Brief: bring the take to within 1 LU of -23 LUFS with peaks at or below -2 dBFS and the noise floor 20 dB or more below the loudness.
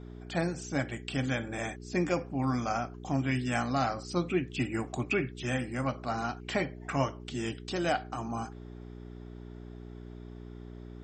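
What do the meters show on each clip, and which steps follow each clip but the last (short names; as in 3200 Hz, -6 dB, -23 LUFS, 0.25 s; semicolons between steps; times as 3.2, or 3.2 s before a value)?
hum 60 Hz; harmonics up to 420 Hz; hum level -42 dBFS; loudness -32.5 LUFS; peak -15.0 dBFS; loudness target -23.0 LUFS
-> de-hum 60 Hz, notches 7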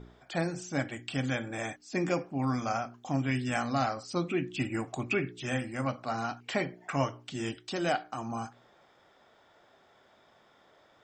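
hum none; loudness -33.0 LUFS; peak -15.0 dBFS; loudness target -23.0 LUFS
-> gain +10 dB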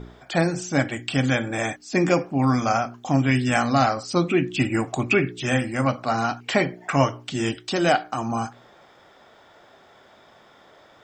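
loudness -23.0 LUFS; peak -5.0 dBFS; noise floor -53 dBFS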